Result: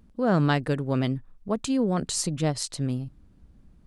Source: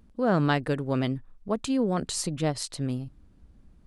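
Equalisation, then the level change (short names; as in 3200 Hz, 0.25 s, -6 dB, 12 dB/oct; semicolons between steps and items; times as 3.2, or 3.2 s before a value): dynamic EQ 6700 Hz, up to +4 dB, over -47 dBFS, Q 1.2; bell 150 Hz +3 dB 1.3 oct; 0.0 dB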